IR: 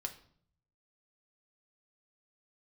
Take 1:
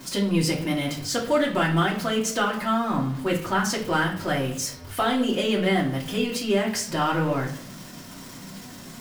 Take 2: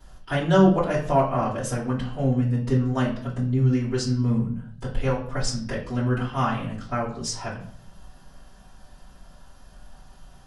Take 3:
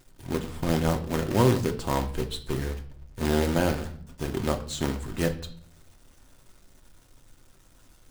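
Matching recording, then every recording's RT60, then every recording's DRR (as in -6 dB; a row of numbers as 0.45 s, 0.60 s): 3; 0.60 s, 0.60 s, 0.60 s; -5.0 dB, -11.0 dB, 3.5 dB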